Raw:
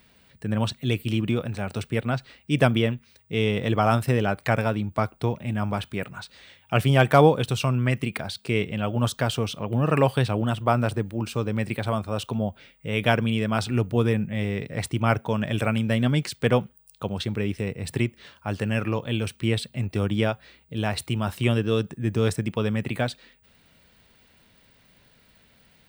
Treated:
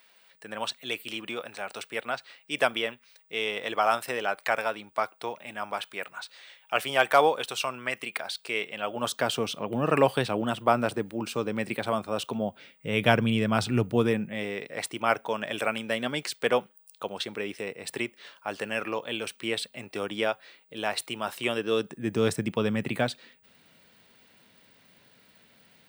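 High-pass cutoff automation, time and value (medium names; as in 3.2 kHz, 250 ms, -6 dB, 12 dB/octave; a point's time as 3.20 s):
8.70 s 630 Hz
9.39 s 240 Hz
12.41 s 240 Hz
13.15 s 110 Hz
13.71 s 110 Hz
14.62 s 430 Hz
21.53 s 430 Hz
22.33 s 160 Hz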